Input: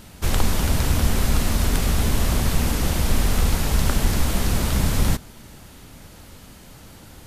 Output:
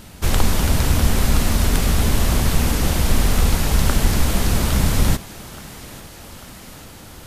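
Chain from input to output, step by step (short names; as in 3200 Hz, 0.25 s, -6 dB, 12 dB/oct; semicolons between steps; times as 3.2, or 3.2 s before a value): thinning echo 0.843 s, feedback 70%, high-pass 180 Hz, level -17 dB; gain +3 dB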